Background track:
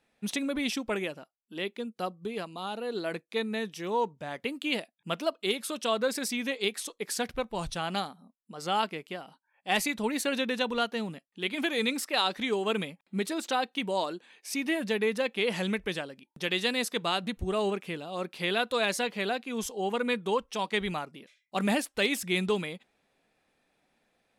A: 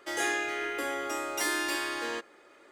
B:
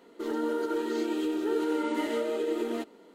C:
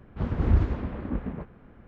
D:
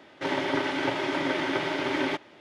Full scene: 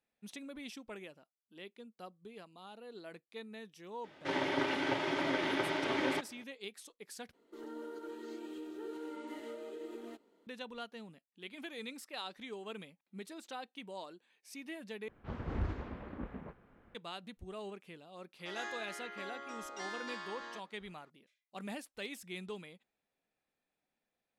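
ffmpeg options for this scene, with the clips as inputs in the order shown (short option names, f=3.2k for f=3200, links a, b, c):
-filter_complex "[0:a]volume=-16dB[a];[3:a]lowshelf=f=320:g=-9[b];[1:a]highpass=140,equalizer=f=310:t=q:w=4:g=-5,equalizer=f=450:t=q:w=4:g=-8,equalizer=f=1.1k:t=q:w=4:g=5,equalizer=f=2.5k:t=q:w=4:g=-7,equalizer=f=5.3k:t=q:w=4:g=-3,lowpass=f=5.9k:w=0.5412,lowpass=f=5.9k:w=1.3066[c];[a]asplit=3[d][e][f];[d]atrim=end=7.334[g];[2:a]atrim=end=3.14,asetpts=PTS-STARTPTS,volume=-15.5dB[h];[e]atrim=start=10.466:end=15.084[i];[b]atrim=end=1.87,asetpts=PTS-STARTPTS,volume=-6.5dB[j];[f]atrim=start=16.946[k];[4:a]atrim=end=2.4,asetpts=PTS-STARTPTS,volume=-6dB,afade=t=in:d=0.004:c=hsin,afade=t=out:st=2.396:d=0.004:c=hsin,adelay=4040[l];[c]atrim=end=2.71,asetpts=PTS-STARTPTS,volume=-12dB,afade=t=in:d=0.004:c=hsin,afade=t=out:st=2.706:d=0.004:c=hsin,adelay=18390[m];[g][h]acrossfade=d=0.004:c1=hsin:c2=hsin[n];[n][i]acrossfade=d=0.004:c1=hsin:c2=hsin[o];[o][j]acrossfade=d=0.004:c1=hsin:c2=hsin[p];[p][k]acrossfade=d=0.004:c1=hsin:c2=hsin[q];[q][l][m]amix=inputs=3:normalize=0"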